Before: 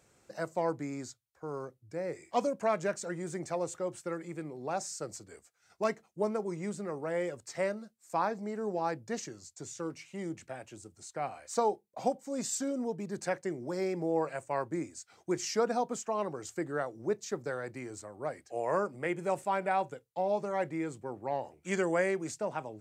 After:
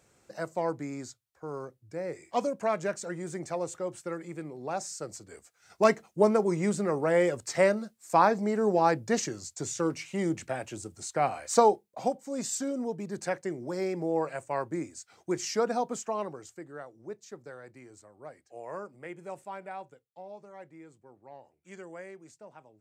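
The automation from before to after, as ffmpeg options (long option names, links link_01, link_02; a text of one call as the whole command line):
ffmpeg -i in.wav -af "volume=9dB,afade=type=in:start_time=5.21:duration=0.66:silence=0.398107,afade=type=out:start_time=11.55:duration=0.43:silence=0.421697,afade=type=out:start_time=16.08:duration=0.49:silence=0.298538,afade=type=out:start_time=19.42:duration=0.93:silence=0.501187" out.wav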